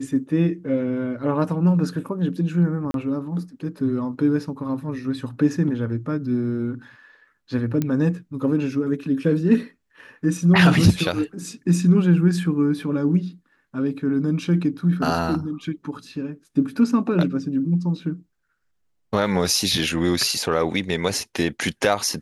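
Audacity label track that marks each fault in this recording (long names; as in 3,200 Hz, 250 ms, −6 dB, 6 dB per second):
2.910000	2.940000	drop-out 32 ms
7.820000	7.820000	click −11 dBFS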